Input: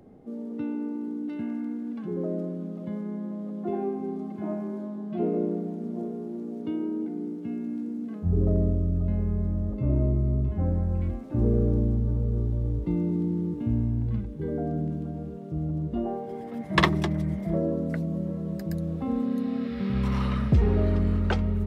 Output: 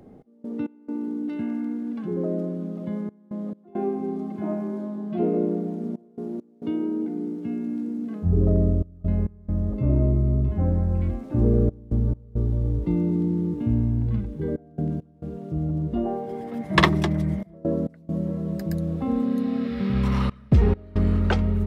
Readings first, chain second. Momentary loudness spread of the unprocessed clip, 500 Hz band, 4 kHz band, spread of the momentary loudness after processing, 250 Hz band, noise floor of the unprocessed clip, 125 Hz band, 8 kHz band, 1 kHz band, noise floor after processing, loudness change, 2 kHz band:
10 LU, +2.5 dB, +3.5 dB, 11 LU, +3.0 dB, −37 dBFS, +2.5 dB, can't be measured, +3.0 dB, −52 dBFS, +3.0 dB, +3.5 dB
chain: gate pattern "x.x.xxxxxxxxx" 68 BPM −24 dB
level +3.5 dB

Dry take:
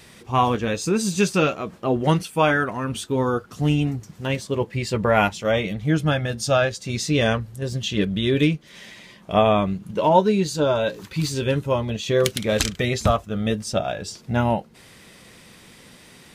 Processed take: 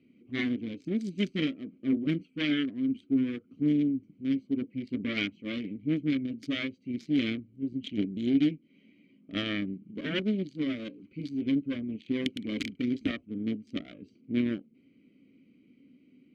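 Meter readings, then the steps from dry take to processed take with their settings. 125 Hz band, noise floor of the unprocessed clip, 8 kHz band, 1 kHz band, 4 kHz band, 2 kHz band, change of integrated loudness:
−15.5 dB, −49 dBFS, below −25 dB, −29.5 dB, −9.5 dB, −11.0 dB, −9.5 dB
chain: adaptive Wiener filter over 25 samples
harmonic generator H 6 −11 dB, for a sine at −2.5 dBFS
formant filter i
level +2.5 dB

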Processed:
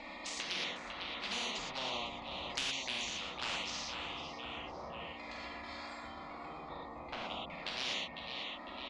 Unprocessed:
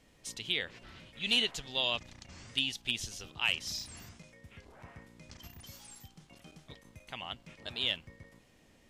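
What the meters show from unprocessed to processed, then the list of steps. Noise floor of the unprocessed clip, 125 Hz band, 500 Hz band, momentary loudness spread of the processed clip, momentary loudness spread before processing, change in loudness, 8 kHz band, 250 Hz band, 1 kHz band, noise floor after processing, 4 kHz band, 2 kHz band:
−64 dBFS, −5.5 dB, 0.0 dB, 10 LU, 23 LU, −6.0 dB, −1.5 dB, −1.5 dB, +6.0 dB, −48 dBFS, −5.0 dB, −3.0 dB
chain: adaptive Wiener filter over 15 samples
auto-filter band-pass saw down 0.4 Hz 600–2,500 Hz
hum removal 87.59 Hz, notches 16
in parallel at −1 dB: upward compression, threshold −50 dBFS
on the sum: phaser with its sweep stopped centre 420 Hz, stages 6
flanger swept by the level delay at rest 3.6 ms, full sweep at −40.5 dBFS
high-frequency loss of the air 130 metres
on a send: repeating echo 502 ms, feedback 41%, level −18.5 dB
on the sum: reverb whose tail is shaped and stops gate 140 ms flat, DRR −5 dB
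every bin compressed towards the loudest bin 4 to 1
level +2 dB

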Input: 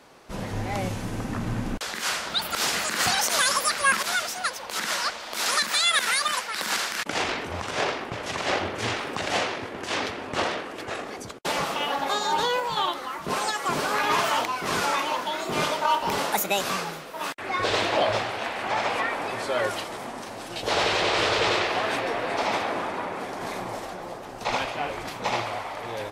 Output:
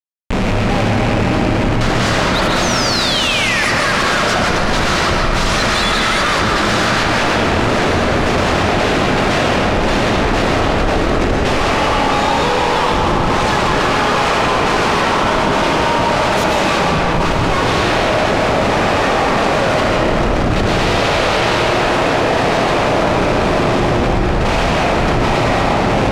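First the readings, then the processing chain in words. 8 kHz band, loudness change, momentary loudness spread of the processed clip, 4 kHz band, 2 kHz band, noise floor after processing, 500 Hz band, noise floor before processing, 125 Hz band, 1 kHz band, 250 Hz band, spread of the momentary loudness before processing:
+4.5 dB, +11.5 dB, 2 LU, +9.0 dB, +11.0 dB, −15 dBFS, +14.0 dB, −38 dBFS, +19.5 dB, +11.5 dB, +18.0 dB, 11 LU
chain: loose part that buzzes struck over −41 dBFS, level −24 dBFS
high-shelf EQ 5,800 Hz +10.5 dB
in parallel at +1 dB: speech leveller within 5 dB 2 s
on the sum: sound drawn into the spectrogram fall, 0:02.62–0:03.63, 1,700–6,600 Hz −14 dBFS
comparator with hysteresis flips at −21.5 dBFS
high-frequency loss of the air 87 metres
feedback delay with all-pass diffusion 910 ms, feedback 73%, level −12 dB
comb and all-pass reverb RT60 3 s, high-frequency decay 0.4×, pre-delay 90 ms, DRR −2 dB
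envelope flattener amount 70%
level −2 dB

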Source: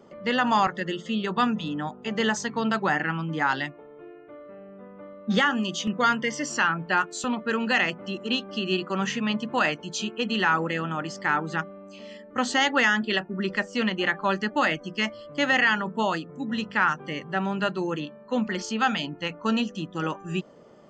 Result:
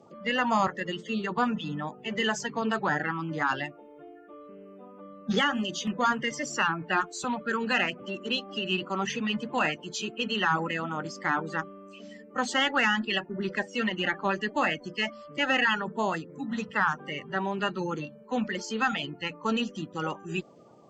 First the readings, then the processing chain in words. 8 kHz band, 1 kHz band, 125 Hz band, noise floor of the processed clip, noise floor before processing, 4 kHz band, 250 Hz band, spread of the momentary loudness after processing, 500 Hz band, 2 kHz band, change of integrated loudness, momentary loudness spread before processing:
−3.0 dB, −3.0 dB, −3.5 dB, −50 dBFS, −47 dBFS, −2.0 dB, −4.0 dB, 9 LU, −3.0 dB, −3.5 dB, −3.0 dB, 9 LU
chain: spectral magnitudes quantised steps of 30 dB
harmonic generator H 6 −40 dB, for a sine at −9.5 dBFS
level −2.5 dB

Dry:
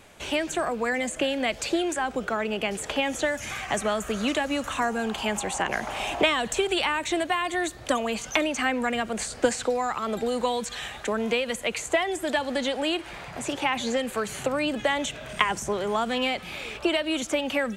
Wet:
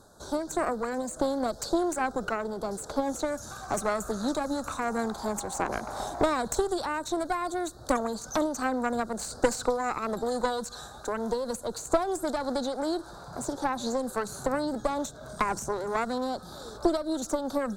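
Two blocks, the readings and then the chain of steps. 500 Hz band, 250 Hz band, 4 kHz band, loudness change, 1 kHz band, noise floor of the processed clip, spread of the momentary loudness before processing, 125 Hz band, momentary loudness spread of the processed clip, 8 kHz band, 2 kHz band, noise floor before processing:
−2.5 dB, −1.5 dB, −11.0 dB, −3.5 dB, −1.5 dB, −46 dBFS, 4 LU, −1.5 dB, 6 LU, −3.0 dB, −9.5 dB, −41 dBFS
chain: elliptic band-stop filter 1,500–3,900 Hz, stop band 40 dB
harmonic generator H 4 −12 dB, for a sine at −10 dBFS
amplitude modulation by smooth noise, depth 55%

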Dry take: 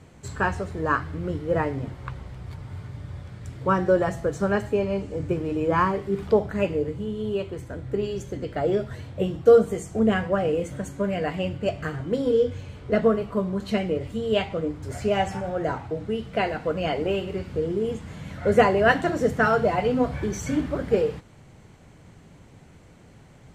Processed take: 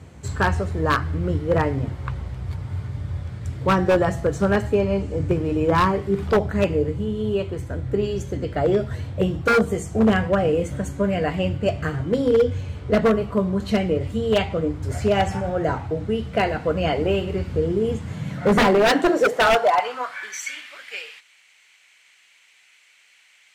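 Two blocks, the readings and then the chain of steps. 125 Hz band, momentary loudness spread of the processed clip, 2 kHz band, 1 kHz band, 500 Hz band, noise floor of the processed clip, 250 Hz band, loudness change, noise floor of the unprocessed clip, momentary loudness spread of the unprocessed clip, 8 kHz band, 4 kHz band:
+6.0 dB, 12 LU, +3.0 dB, +3.5 dB, +2.0 dB, −56 dBFS, +3.5 dB, +3.0 dB, −50 dBFS, 14 LU, can't be measured, +6.5 dB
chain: high-pass filter sweep 70 Hz → 2,400 Hz, 0:17.81–0:20.54
wave folding −14 dBFS
level +3.5 dB

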